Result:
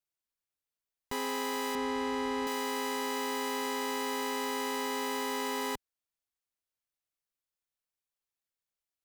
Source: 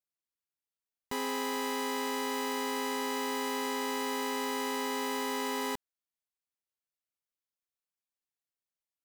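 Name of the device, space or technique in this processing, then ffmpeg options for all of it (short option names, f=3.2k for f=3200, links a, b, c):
low shelf boost with a cut just above: -filter_complex "[0:a]lowshelf=f=66:g=7.5,equalizer=f=210:t=o:w=0.59:g=-4,asettb=1/sr,asplit=3[a][b][c];[a]atrim=end=1.754[d];[b]atrim=start=1.75:end=2.47,asetpts=PTS-STARTPTS,afade=t=in:d=0.004:c=qsin,afade=t=out:st=0.716:d=0.004:c=qsin,aemphasis=mode=reproduction:type=bsi[e];[c]atrim=start=2.466[f];[d][e]acrossfade=d=0.004:c1=hsin:c2=qsin[g];[g][f]acrossfade=d=0.004:c1=qsin:c2=hsin"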